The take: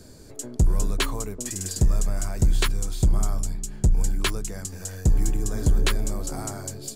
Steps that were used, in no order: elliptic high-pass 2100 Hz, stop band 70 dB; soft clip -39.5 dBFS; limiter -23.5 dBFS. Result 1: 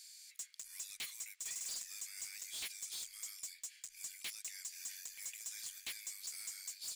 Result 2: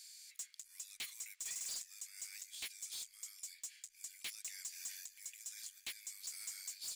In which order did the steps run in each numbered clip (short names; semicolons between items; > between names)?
elliptic high-pass > limiter > soft clip; limiter > elliptic high-pass > soft clip